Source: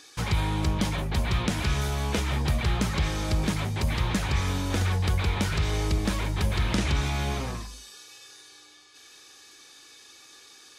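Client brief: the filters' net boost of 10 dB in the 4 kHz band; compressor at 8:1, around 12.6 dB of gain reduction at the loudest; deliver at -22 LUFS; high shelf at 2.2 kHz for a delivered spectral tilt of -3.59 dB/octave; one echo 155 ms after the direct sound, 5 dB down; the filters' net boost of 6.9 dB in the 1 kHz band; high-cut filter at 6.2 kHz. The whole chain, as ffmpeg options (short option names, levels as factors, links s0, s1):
-af "lowpass=6200,equalizer=f=1000:t=o:g=7,highshelf=f=2200:g=5,equalizer=f=4000:t=o:g=8,acompressor=threshold=0.0251:ratio=8,aecho=1:1:155:0.562,volume=4.22"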